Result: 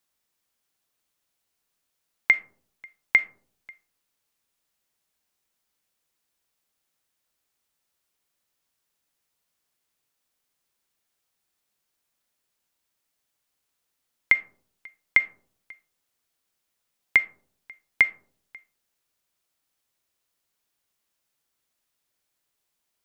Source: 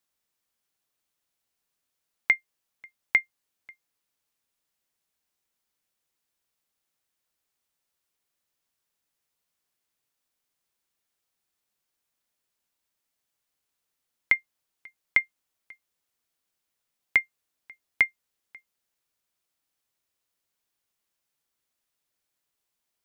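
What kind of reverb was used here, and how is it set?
comb and all-pass reverb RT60 0.58 s, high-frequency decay 0.3×, pre-delay 0 ms, DRR 14 dB
level +3 dB

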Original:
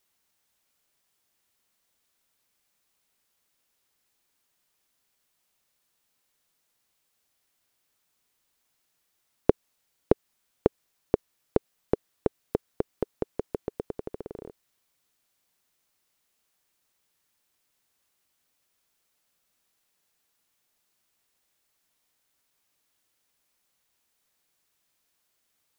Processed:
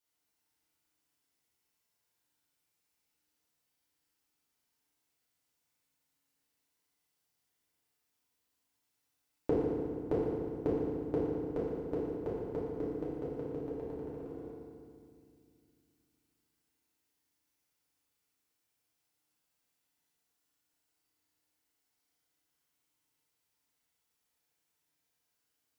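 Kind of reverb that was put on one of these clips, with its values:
feedback delay network reverb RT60 2.2 s, low-frequency decay 1.5×, high-frequency decay 0.8×, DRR −8.5 dB
level −15.5 dB

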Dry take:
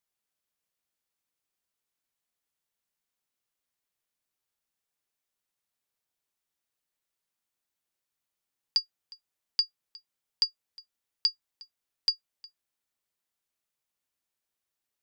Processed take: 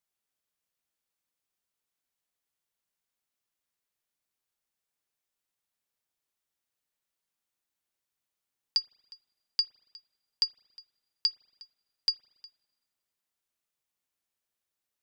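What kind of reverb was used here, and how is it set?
spring reverb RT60 1.4 s, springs 40/56 ms, chirp 40 ms, DRR 20 dB
level −1 dB

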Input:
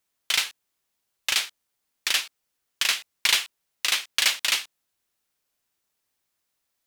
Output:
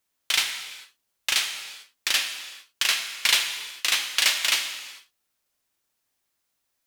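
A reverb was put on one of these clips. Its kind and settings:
reverb whose tail is shaped and stops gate 470 ms falling, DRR 5 dB

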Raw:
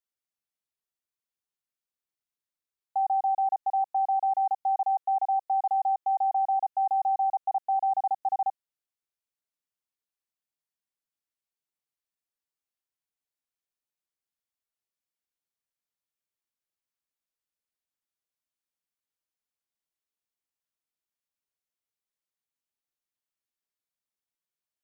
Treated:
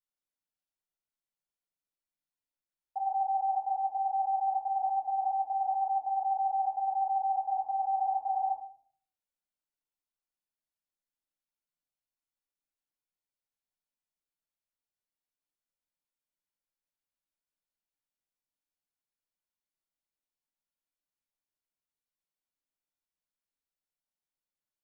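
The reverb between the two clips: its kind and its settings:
rectangular room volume 630 cubic metres, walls furnished, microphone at 7.5 metres
level −14.5 dB

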